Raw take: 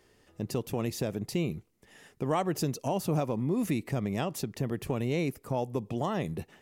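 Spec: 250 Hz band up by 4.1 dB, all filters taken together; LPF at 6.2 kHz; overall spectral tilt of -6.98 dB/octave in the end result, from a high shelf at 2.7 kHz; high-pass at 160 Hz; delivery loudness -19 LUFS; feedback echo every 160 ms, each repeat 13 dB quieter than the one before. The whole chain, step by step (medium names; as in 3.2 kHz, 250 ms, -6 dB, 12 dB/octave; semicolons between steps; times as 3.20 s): high-pass 160 Hz; low-pass 6.2 kHz; peaking EQ 250 Hz +6.5 dB; treble shelf 2.7 kHz -8.5 dB; feedback delay 160 ms, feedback 22%, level -13 dB; trim +11 dB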